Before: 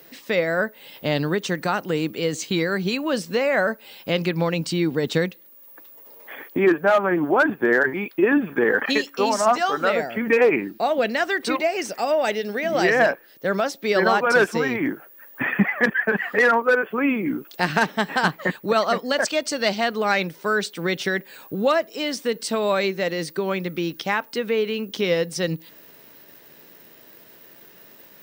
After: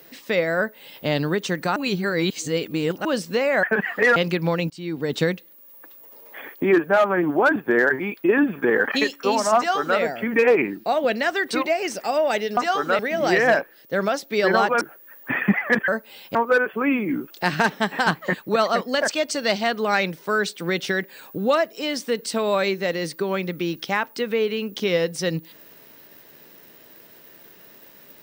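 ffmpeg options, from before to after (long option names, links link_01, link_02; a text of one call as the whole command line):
ffmpeg -i in.wav -filter_complex "[0:a]asplit=11[link_01][link_02][link_03][link_04][link_05][link_06][link_07][link_08][link_09][link_10][link_11];[link_01]atrim=end=1.762[link_12];[link_02]atrim=start=1.758:end=3.052,asetpts=PTS-STARTPTS,areverse[link_13];[link_03]atrim=start=3.048:end=3.632[link_14];[link_04]atrim=start=15.988:end=16.522[link_15];[link_05]atrim=start=4.098:end=4.64,asetpts=PTS-STARTPTS,afade=type=out:start_time=0.538:duration=0.004:curve=hsin:silence=0.0630957[link_16];[link_06]atrim=start=4.64:end=12.512,asetpts=PTS-STARTPTS,afade=type=in:duration=0.48:silence=0.0630957[link_17];[link_07]atrim=start=9.508:end=9.932[link_18];[link_08]atrim=start=12.508:end=14.332[link_19];[link_09]atrim=start=14.918:end=15.992[link_20];[link_10]atrim=start=3.628:end=4.102[link_21];[link_11]atrim=start=16.518[link_22];[link_12][link_13]acrossfade=duration=0.004:curve1=hsin:curve2=hsin[link_23];[link_23][link_14]acrossfade=duration=0.004:curve1=hsin:curve2=hsin[link_24];[link_24][link_15]acrossfade=duration=0.004:curve1=hsin:curve2=hsin[link_25];[link_16][link_17]concat=n=2:v=0:a=1[link_26];[link_25][link_26]acrossfade=duration=0.004:curve1=hsin:curve2=hsin[link_27];[link_27][link_18]acrossfade=duration=0.004:curve1=hsin:curve2=hsin[link_28];[link_28][link_19]acrossfade=duration=0.004:curve1=hsin:curve2=hsin[link_29];[link_29][link_20]acrossfade=duration=0.004:curve1=hsin:curve2=hsin[link_30];[link_30][link_21]acrossfade=duration=0.004:curve1=hsin:curve2=hsin[link_31];[link_31][link_22]acrossfade=duration=0.004:curve1=hsin:curve2=hsin" out.wav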